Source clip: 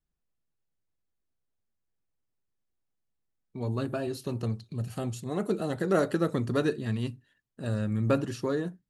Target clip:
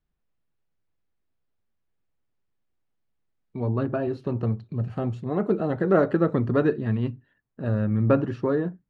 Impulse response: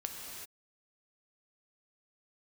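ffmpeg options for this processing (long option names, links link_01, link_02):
-af "asetnsamples=nb_out_samples=441:pad=0,asendcmd='3.6 lowpass f 1700',lowpass=3200,volume=5.5dB"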